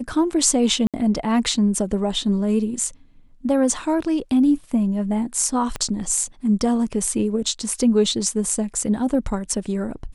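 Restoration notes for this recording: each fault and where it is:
0.87–0.94 s: dropout 67 ms
5.76 s: pop -12 dBFS

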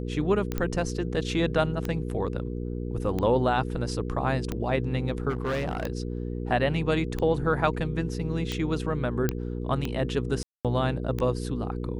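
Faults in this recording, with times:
hum 60 Hz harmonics 8 -32 dBFS
tick 45 rpm -16 dBFS
0.58 s: pop -15 dBFS
5.29–5.90 s: clipped -24.5 dBFS
9.29 s: pop -11 dBFS
10.43–10.65 s: dropout 217 ms

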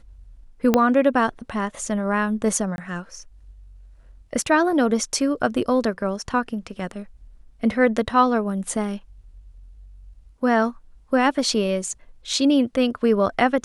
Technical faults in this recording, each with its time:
0.74 s: pop -4 dBFS
2.76–2.78 s: dropout 21 ms

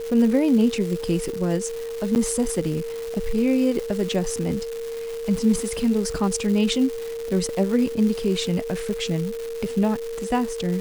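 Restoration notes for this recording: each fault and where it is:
crackle 470 per s -29 dBFS
whine 460 Hz -28 dBFS
2.15–2.16 s: dropout 9.1 ms

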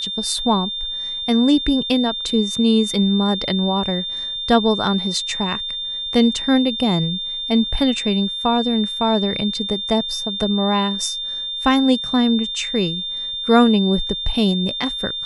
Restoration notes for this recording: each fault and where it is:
whine 3.6 kHz -24 dBFS

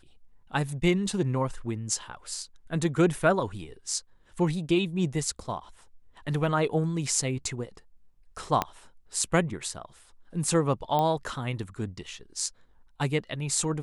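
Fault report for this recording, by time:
8.62 s: pop -11 dBFS
10.99 s: pop -15 dBFS

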